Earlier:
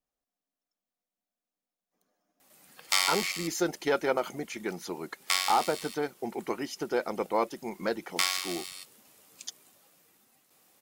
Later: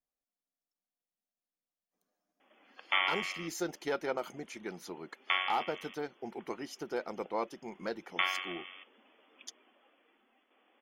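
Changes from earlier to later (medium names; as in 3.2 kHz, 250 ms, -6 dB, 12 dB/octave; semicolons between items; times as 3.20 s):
speech -7.0 dB; background: add brick-wall FIR band-pass 210–3500 Hz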